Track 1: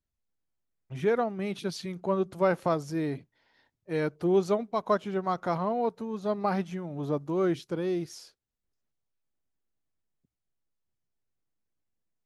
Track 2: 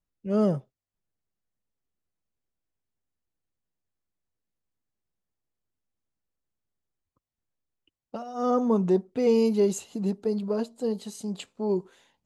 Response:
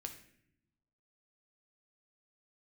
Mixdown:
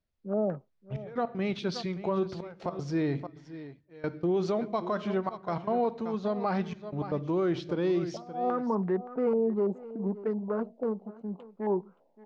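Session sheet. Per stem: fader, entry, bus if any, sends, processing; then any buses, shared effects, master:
−0.5 dB, 0.00 s, send −3 dB, echo send −12 dB, low-pass filter 5,300 Hz 24 dB per octave; gate pattern "xxxxxxxxxx..x.x" 156 BPM −24 dB
−3.5 dB, 0.00 s, no send, echo send −20 dB, adaptive Wiener filter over 25 samples; high-pass filter 160 Hz 24 dB per octave; low-pass on a step sequencer 6 Hz 640–1,800 Hz; automatic ducking −8 dB, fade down 1.95 s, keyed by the first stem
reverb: on, pre-delay 6 ms
echo: single-tap delay 573 ms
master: brickwall limiter −20 dBFS, peak gain reduction 10.5 dB

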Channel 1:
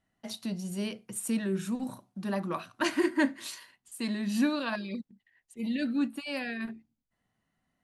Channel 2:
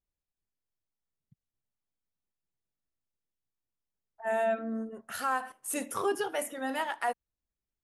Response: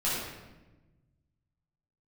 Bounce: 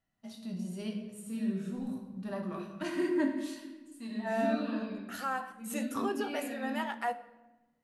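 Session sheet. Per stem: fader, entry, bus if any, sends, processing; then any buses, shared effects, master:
−1.0 dB, 0.00 s, send −11 dB, harmonic and percussive parts rebalanced percussive −11 dB; automatic ducking −15 dB, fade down 0.30 s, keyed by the second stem
+0.5 dB, 0.00 s, send −22 dB, parametric band 9,700 Hz −11.5 dB 0.23 octaves; mains-hum notches 50/100 Hz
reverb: on, RT60 1.1 s, pre-delay 7 ms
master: flanger 0.84 Hz, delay 7.8 ms, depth 4.4 ms, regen −78%

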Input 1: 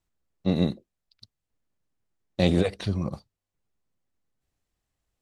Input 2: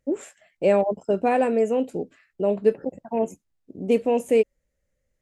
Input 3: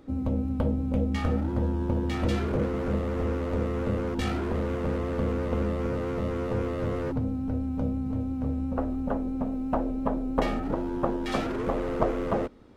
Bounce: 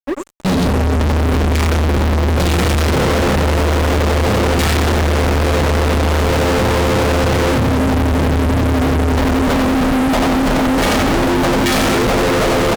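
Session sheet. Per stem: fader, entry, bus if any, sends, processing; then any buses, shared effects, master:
0.0 dB, 0.00 s, no send, no echo send, transient designer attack +8 dB, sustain −9 dB
−18.5 dB, 0.00 s, no send, echo send −4.5 dB, bit-depth reduction 10 bits, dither none; automatic ducking −7 dB, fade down 0.35 s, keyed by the first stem
+1.5 dB, 0.40 s, no send, echo send −4 dB, parametric band 630 Hz −2.5 dB 2.2 octaves; automatic gain control gain up to 7.5 dB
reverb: not used
echo: repeating echo 90 ms, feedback 45%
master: notch filter 1,100 Hz; fuzz pedal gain 42 dB, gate −46 dBFS

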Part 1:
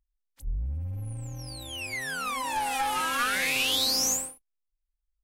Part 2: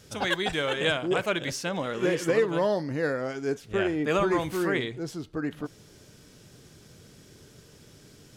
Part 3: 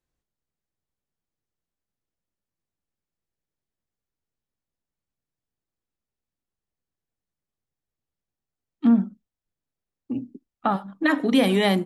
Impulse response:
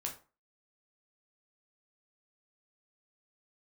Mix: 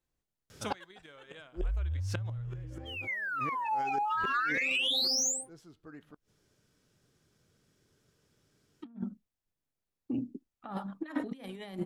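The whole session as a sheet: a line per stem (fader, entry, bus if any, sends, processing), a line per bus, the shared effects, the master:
−7.5 dB, 1.15 s, no send, low-pass that shuts in the quiet parts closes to 930 Hz, open at −25 dBFS; gate on every frequency bin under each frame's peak −10 dB strong; leveller curve on the samples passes 1
0:02.16 −5.5 dB → 0:02.52 −12.5 dB → 0:04.84 −12.5 dB → 0:05.06 −22.5 dB, 0.50 s, no send, parametric band 1,300 Hz +4 dB 0.95 octaves; gate with flip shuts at −19 dBFS, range −25 dB
−4.5 dB, 0.00 s, no send, no processing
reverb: not used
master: compressor whose output falls as the input rises −32 dBFS, ratio −0.5

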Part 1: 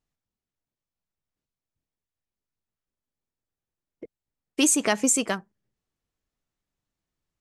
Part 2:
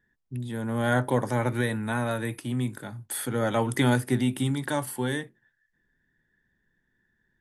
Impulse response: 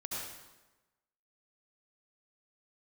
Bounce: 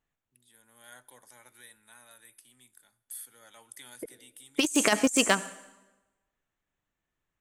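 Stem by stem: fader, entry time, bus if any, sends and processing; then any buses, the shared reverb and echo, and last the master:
−1.0 dB, 0.00 s, send −18 dB, adaptive Wiener filter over 9 samples; spectral tilt +2.5 dB per octave
−15.5 dB, 0.00 s, send −23.5 dB, first difference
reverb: on, RT60 1.1 s, pre-delay 63 ms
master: low-shelf EQ 68 Hz +9 dB; compressor whose output falls as the input rises −23 dBFS, ratio −0.5

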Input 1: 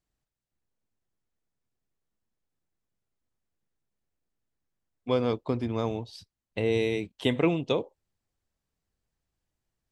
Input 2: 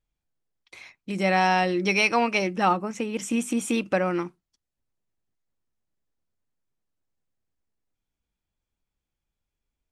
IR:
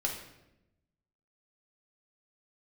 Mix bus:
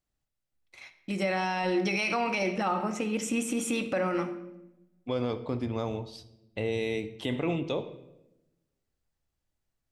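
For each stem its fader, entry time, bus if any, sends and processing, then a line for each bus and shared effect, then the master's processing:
−3.5 dB, 0.00 s, send −10.5 dB, no processing
−4.5 dB, 0.00 s, send −6 dB, noise gate −45 dBFS, range −22 dB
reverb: on, RT60 0.90 s, pre-delay 3 ms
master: brickwall limiter −19.5 dBFS, peak gain reduction 10 dB

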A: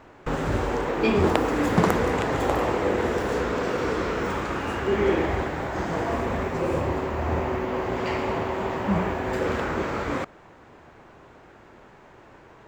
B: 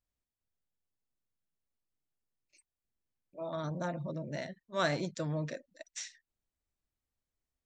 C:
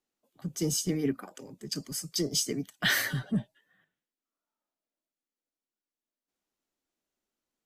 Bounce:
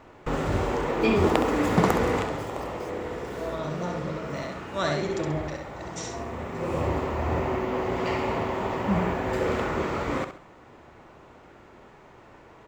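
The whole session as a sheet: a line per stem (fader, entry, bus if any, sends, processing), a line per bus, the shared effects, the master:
−1.0 dB, 0.00 s, no send, echo send −9.5 dB, automatic ducking −16 dB, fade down 0.35 s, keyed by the second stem
+2.5 dB, 0.00 s, no send, echo send −3.5 dB, no processing
−15.0 dB, 0.45 s, no send, no echo send, downward compressor, threshold −29 dBFS, peak gain reduction 7 dB; comparator with hysteresis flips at −38.5 dBFS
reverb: not used
echo: repeating echo 67 ms, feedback 33%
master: notch filter 1,600 Hz, Q 13

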